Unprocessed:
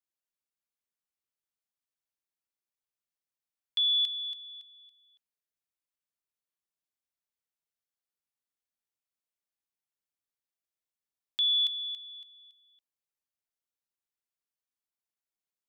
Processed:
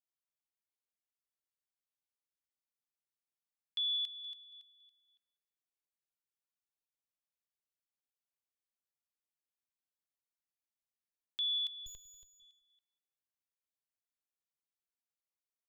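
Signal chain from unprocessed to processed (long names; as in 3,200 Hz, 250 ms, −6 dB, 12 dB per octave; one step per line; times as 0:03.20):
0:11.86–0:12.40: lower of the sound and its delayed copy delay 1.9 ms
repeating echo 192 ms, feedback 16%, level −18 dB
level −8 dB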